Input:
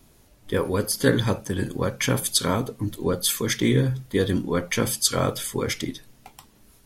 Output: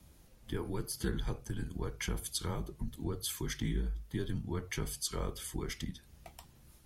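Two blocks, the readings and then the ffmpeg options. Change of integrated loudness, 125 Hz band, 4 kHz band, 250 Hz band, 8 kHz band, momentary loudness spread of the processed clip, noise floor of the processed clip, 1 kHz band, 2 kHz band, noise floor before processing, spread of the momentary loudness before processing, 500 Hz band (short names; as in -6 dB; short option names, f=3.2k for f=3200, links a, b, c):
-14.5 dB, -12.5 dB, -15.0 dB, -14.5 dB, -14.5 dB, 8 LU, -61 dBFS, -16.0 dB, -15.5 dB, -56 dBFS, 7 LU, -17.5 dB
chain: -af "equalizer=f=150:w=0.91:g=7.5,acompressor=threshold=-34dB:ratio=2,afreqshift=-78,volume=-6.5dB"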